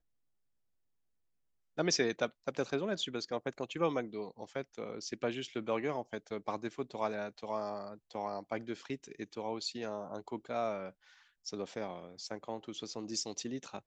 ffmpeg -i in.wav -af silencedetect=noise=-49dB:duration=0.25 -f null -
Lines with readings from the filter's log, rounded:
silence_start: 0.00
silence_end: 1.78 | silence_duration: 1.78
silence_start: 10.90
silence_end: 11.46 | silence_duration: 0.56